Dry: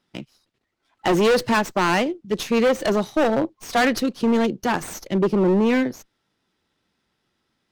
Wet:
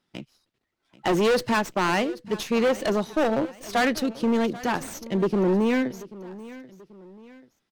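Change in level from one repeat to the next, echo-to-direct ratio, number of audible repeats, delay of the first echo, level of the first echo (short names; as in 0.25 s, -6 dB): -7.5 dB, -17.5 dB, 2, 0.786 s, -18.0 dB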